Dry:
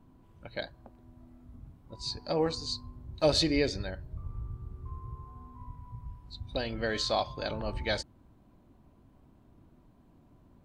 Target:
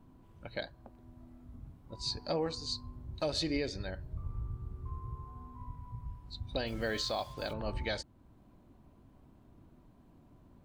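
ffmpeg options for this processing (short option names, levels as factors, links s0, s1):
-filter_complex "[0:a]alimiter=limit=0.0708:level=0:latency=1:release=461,asplit=3[s0][s1][s2];[s0]afade=t=out:st=6.66:d=0.02[s3];[s1]acrusher=bits=8:mix=0:aa=0.5,afade=t=in:st=6.66:d=0.02,afade=t=out:st=7.52:d=0.02[s4];[s2]afade=t=in:st=7.52:d=0.02[s5];[s3][s4][s5]amix=inputs=3:normalize=0"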